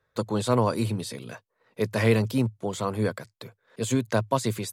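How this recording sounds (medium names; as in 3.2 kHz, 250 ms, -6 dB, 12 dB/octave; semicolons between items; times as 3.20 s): noise floor -77 dBFS; spectral tilt -6.0 dB/octave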